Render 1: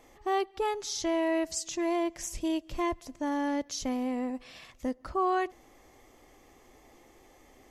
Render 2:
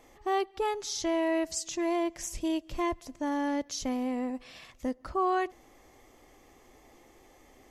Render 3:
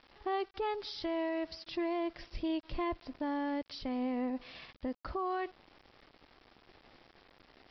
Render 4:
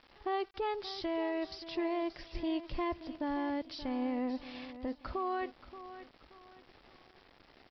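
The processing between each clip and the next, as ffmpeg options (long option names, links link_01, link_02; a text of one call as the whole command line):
ffmpeg -i in.wav -af anull out.wav
ffmpeg -i in.wav -af "alimiter=level_in=3.5dB:limit=-24dB:level=0:latency=1:release=202,volume=-3.5dB,aresample=11025,aeval=exprs='val(0)*gte(abs(val(0)),0.00211)':channel_layout=same,aresample=44100" out.wav
ffmpeg -i in.wav -af "aecho=1:1:578|1156|1734:0.211|0.0697|0.023" out.wav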